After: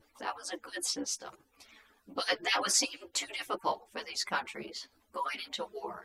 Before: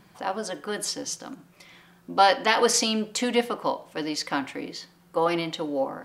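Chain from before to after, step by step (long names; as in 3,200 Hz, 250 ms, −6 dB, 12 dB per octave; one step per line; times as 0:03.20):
harmonic-percussive split with one part muted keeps percussive
string-ensemble chorus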